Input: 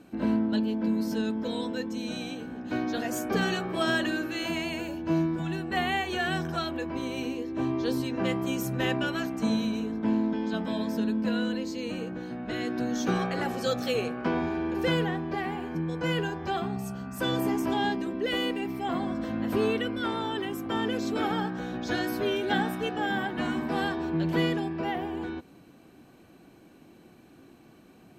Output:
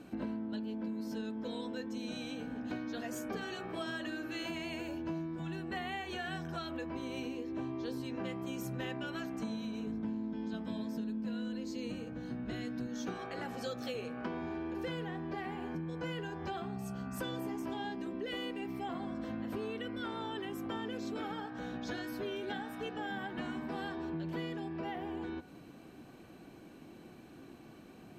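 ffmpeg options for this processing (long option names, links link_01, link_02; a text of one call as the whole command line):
ffmpeg -i in.wav -filter_complex "[0:a]asettb=1/sr,asplit=3[link_01][link_02][link_03];[link_01]atrim=end=9.874[link_04];[link_02]atrim=start=9.87:end=12.87,asetpts=PTS-STARTPTS,afade=type=in:duration=0.004:curve=qsin,afade=type=out:start_time=2.996:duration=0.004:curve=qsin,bass=frequency=250:gain=9,treble=frequency=4000:gain=4[link_05];[link_03]atrim=start=12.866[link_06];[link_04][link_05]acrossfade=duration=0.004:curve1=hsin:curve2=qsin[link_07];[link_07][link_06]acrossfade=duration=0.004:curve1=qsin:curve2=hsin,highshelf=frequency=8000:gain=-4.5,acompressor=threshold=-38dB:ratio=6,bandreject=frequency=92.02:width_type=h:width=4,bandreject=frequency=184.04:width_type=h:width=4,bandreject=frequency=276.06:width_type=h:width=4,bandreject=frequency=368.08:width_type=h:width=4,bandreject=frequency=460.1:width_type=h:width=4,bandreject=frequency=552.12:width_type=h:width=4,bandreject=frequency=644.14:width_type=h:width=4,bandreject=frequency=736.16:width_type=h:width=4,bandreject=frequency=828.18:width_type=h:width=4,bandreject=frequency=920.2:width_type=h:width=4,bandreject=frequency=1012.22:width_type=h:width=4,bandreject=frequency=1104.24:width_type=h:width=4,bandreject=frequency=1196.26:width_type=h:width=4,bandreject=frequency=1288.28:width_type=h:width=4,bandreject=frequency=1380.3:width_type=h:width=4,bandreject=frequency=1472.32:width_type=h:width=4,bandreject=frequency=1564.34:width_type=h:width=4,bandreject=frequency=1656.36:width_type=h:width=4,bandreject=frequency=1748.38:width_type=h:width=4,bandreject=frequency=1840.4:width_type=h:width=4,bandreject=frequency=1932.42:width_type=h:width=4,bandreject=frequency=2024.44:width_type=h:width=4,bandreject=frequency=2116.46:width_type=h:width=4,bandreject=frequency=2208.48:width_type=h:width=4,bandreject=frequency=2300.5:width_type=h:width=4,bandreject=frequency=2392.52:width_type=h:width=4,bandreject=frequency=2484.54:width_type=h:width=4,bandreject=frequency=2576.56:width_type=h:width=4,volume=1dB" out.wav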